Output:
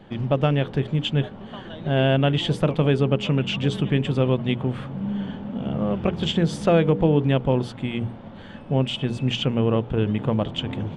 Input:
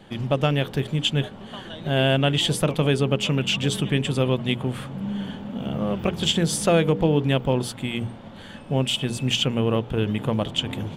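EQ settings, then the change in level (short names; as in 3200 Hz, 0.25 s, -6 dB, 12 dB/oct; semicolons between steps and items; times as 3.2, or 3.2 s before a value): tape spacing loss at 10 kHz 21 dB; +2.0 dB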